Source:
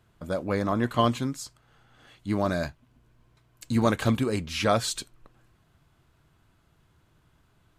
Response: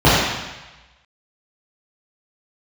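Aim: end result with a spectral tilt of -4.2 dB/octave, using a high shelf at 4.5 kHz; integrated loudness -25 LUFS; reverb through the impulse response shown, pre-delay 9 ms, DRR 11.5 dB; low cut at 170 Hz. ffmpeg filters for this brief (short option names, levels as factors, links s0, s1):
-filter_complex "[0:a]highpass=170,highshelf=f=4500:g=5.5,asplit=2[s0][s1];[1:a]atrim=start_sample=2205,adelay=9[s2];[s1][s2]afir=irnorm=-1:irlink=0,volume=0.00944[s3];[s0][s3]amix=inputs=2:normalize=0,volume=1.33"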